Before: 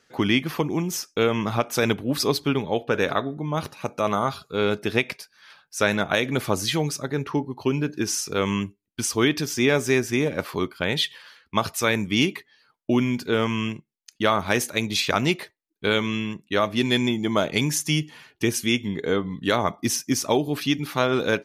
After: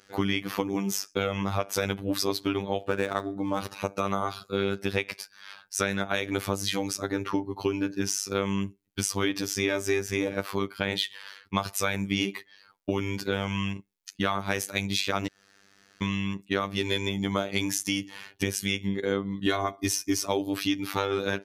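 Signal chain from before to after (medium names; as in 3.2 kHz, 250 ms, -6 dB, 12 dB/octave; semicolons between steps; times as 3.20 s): 2.80–3.61 s: median filter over 9 samples; 15.27–16.02 s: room tone; robot voice 98.5 Hz; 19.46–20.26 s: comb 2.8 ms, depth 78%; compression 3:1, threshold -31 dBFS, peak gain reduction 12 dB; trim +5.5 dB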